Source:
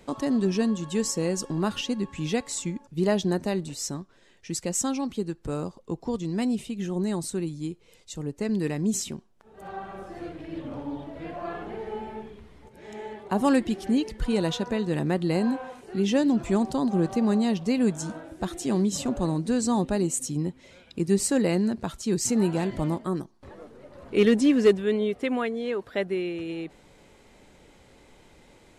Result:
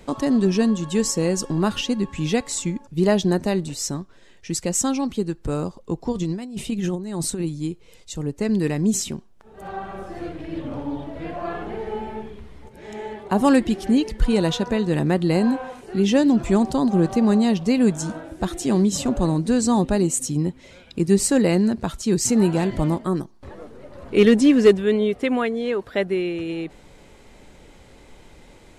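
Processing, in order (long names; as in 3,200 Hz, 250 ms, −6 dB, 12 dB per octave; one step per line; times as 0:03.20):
low-shelf EQ 63 Hz +7.5 dB
0:06.12–0:07.44: compressor whose output falls as the input rises −30 dBFS, ratio −0.5
level +5 dB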